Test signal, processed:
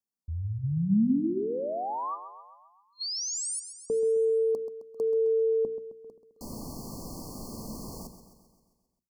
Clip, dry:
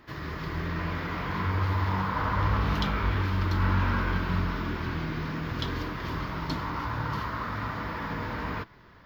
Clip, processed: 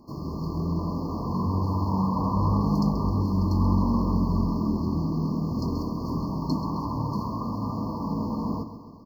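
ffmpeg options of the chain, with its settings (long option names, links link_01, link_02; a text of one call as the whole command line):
ffmpeg -i in.wav -filter_complex "[0:a]afftfilt=real='re*(1-between(b*sr/4096,1200,4200))':imag='im*(1-between(b*sr/4096,1200,4200))':win_size=4096:overlap=0.75,equalizer=frequency=220:width=1.5:gain=12,bandreject=frequency=60:width_type=h:width=6,bandreject=frequency=120:width_type=h:width=6,bandreject=frequency=180:width_type=h:width=6,bandreject=frequency=240:width_type=h:width=6,bandreject=frequency=300:width_type=h:width=6,bandreject=frequency=360:width_type=h:width=6,asplit=2[link_01][link_02];[link_02]aecho=0:1:132|264|396|528|660|792|924:0.266|0.154|0.0895|0.0519|0.0301|0.0175|0.0101[link_03];[link_01][link_03]amix=inputs=2:normalize=0" out.wav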